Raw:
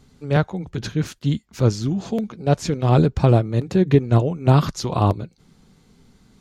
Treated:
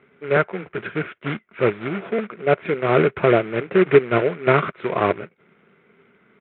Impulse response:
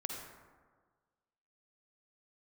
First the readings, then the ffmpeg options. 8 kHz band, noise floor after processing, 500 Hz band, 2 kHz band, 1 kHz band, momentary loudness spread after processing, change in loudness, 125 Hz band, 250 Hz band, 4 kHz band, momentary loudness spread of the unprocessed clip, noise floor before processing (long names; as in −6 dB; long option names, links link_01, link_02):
below −40 dB, −60 dBFS, +4.5 dB, +10.5 dB, +2.0 dB, 12 LU, −0.5 dB, −11.0 dB, −3.5 dB, −3.0 dB, 10 LU, −58 dBFS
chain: -af "bandreject=frequency=780:width=12,aresample=8000,acrusher=bits=3:mode=log:mix=0:aa=0.000001,aresample=44100,highpass=260,equalizer=frequency=270:width_type=q:width=4:gain=-6,equalizer=frequency=400:width_type=q:width=4:gain=7,equalizer=frequency=620:width_type=q:width=4:gain=3,equalizer=frequency=890:width_type=q:width=4:gain=-4,equalizer=frequency=1400:width_type=q:width=4:gain=8,equalizer=frequency=2200:width_type=q:width=4:gain=8,lowpass=frequency=2600:width=0.5412,lowpass=frequency=2600:width=1.3066,volume=1dB"